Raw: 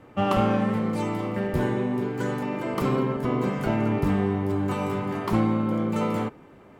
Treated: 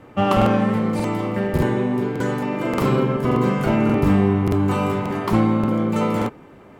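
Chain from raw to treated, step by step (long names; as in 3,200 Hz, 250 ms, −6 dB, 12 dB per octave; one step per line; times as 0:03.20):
0:02.56–0:04.92: double-tracking delay 40 ms −7 dB
regular buffer underruns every 0.58 s, samples 2,048, repeat, from 0:00.37
level +5 dB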